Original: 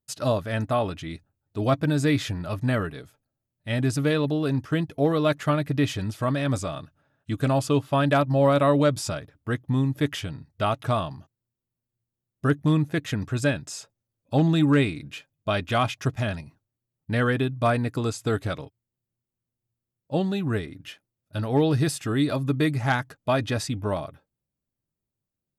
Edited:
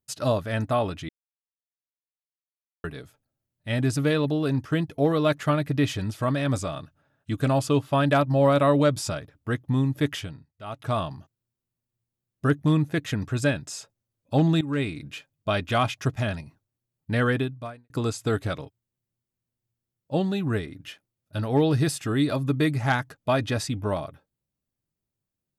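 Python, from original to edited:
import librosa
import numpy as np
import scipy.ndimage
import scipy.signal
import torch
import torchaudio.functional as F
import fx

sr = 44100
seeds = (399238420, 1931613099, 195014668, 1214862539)

y = fx.edit(x, sr, fx.silence(start_s=1.09, length_s=1.75),
    fx.fade_down_up(start_s=10.13, length_s=0.89, db=-17.0, fade_s=0.39),
    fx.fade_in_from(start_s=14.61, length_s=0.42, floor_db=-17.0),
    fx.fade_out_span(start_s=17.37, length_s=0.53, curve='qua'), tone=tone)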